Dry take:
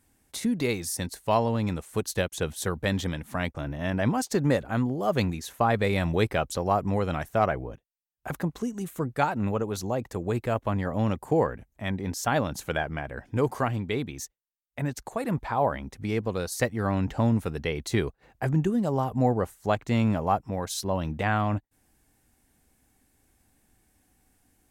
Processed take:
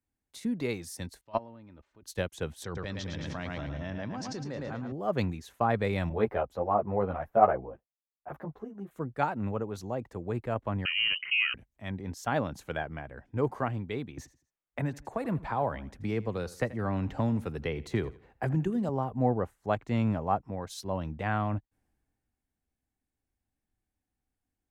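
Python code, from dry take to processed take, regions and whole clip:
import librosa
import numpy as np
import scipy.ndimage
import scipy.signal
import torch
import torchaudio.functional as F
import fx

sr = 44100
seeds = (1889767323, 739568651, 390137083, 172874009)

y = fx.chain(x, sr, fx.lowpass(hz=5200.0, slope=24),
    fx.level_steps(step_db=21),
    fx.comb(ms=3.3, depth=0.42), at=(1.21, 2.04))
y = fx.chain(y, sr, fx.ladder_lowpass(hz=6200.0, resonance_pct=55),
    fx.echo_feedback(ms=110, feedback_pct=50, wet_db=-6.5),
    fx.env_flatten(amount_pct=100), at=(2.64, 4.92))
y = fx.chain(y, sr, fx.curve_eq(hz=(270.0, 690.0, 8800.0, 14000.0), db=(0, 8, -14, 1)),
    fx.ensemble(), at=(6.09, 8.91))
y = fx.chain(y, sr, fx.notch(hz=2300.0, q=6.5),
    fx.freq_invert(carrier_hz=3000),
    fx.env_flatten(amount_pct=50), at=(10.85, 11.54))
y = fx.chain(y, sr, fx.echo_feedback(ms=82, feedback_pct=33, wet_db=-18.5),
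    fx.band_squash(depth_pct=70), at=(14.17, 18.89))
y = fx.high_shelf(y, sr, hz=4400.0, db=-10.5)
y = fx.band_widen(y, sr, depth_pct=40)
y = y * 10.0 ** (-4.5 / 20.0)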